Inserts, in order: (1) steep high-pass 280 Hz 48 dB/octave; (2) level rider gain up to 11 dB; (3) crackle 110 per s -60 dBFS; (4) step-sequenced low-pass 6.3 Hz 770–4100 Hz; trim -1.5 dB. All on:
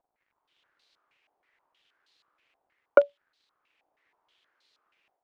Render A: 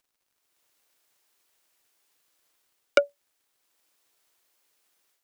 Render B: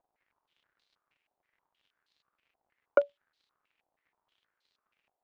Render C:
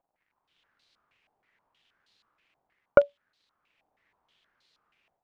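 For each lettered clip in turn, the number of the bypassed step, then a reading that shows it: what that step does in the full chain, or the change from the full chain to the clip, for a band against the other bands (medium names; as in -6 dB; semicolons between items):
4, 2 kHz band +4.5 dB; 2, loudness change -5.0 LU; 1, 250 Hz band +2.5 dB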